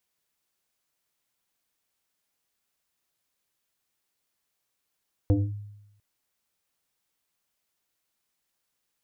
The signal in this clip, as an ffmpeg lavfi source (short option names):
-f lavfi -i "aevalsrc='0.158*pow(10,-3*t/0.9)*sin(2*PI*103*t+1.5*clip(1-t/0.23,0,1)*sin(2*PI*1.92*103*t))':d=0.7:s=44100"